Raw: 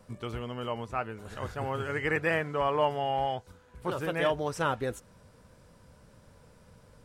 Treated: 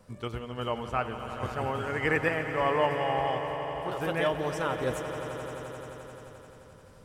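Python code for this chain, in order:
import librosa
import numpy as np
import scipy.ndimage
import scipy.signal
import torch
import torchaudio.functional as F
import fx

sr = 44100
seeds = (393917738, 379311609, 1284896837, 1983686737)

p1 = fx.level_steps(x, sr, step_db=18)
p2 = x + (p1 * 10.0 ** (-2.0 / 20.0))
p3 = fx.tremolo_random(p2, sr, seeds[0], hz=3.5, depth_pct=55)
y = fx.echo_swell(p3, sr, ms=87, loudest=5, wet_db=-13.5)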